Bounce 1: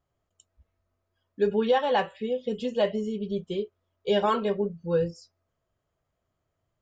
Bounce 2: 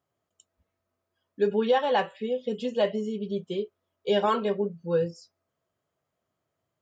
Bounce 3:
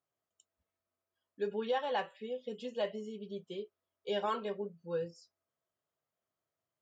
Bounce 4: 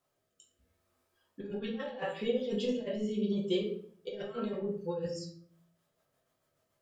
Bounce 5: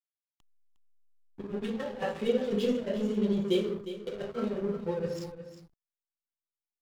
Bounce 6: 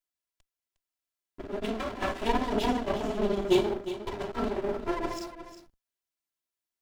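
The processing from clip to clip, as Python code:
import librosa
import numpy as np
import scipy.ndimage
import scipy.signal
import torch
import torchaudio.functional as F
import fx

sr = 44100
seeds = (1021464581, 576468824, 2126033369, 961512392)

y1 = scipy.signal.sosfilt(scipy.signal.butter(2, 140.0, 'highpass', fs=sr, output='sos'), x)
y2 = fx.low_shelf(y1, sr, hz=340.0, db=-6.5)
y2 = y2 * 10.0 ** (-8.5 / 20.0)
y3 = fx.over_compress(y2, sr, threshold_db=-41.0, ratio=-0.5)
y3 = fx.rotary_switch(y3, sr, hz=0.75, then_hz=7.0, switch_at_s=5.16)
y3 = fx.room_shoebox(y3, sr, seeds[0], volume_m3=60.0, walls='mixed', distance_m=0.8)
y3 = y3 * 10.0 ** (6.0 / 20.0)
y4 = fx.backlash(y3, sr, play_db=-40.0)
y4 = y4 + 10.0 ** (-12.0 / 20.0) * np.pad(y4, (int(358 * sr / 1000.0), 0))[:len(y4)]
y4 = y4 * 10.0 ** (4.0 / 20.0)
y5 = fx.lower_of_two(y4, sr, delay_ms=3.0)
y5 = y5 * 10.0 ** (4.5 / 20.0)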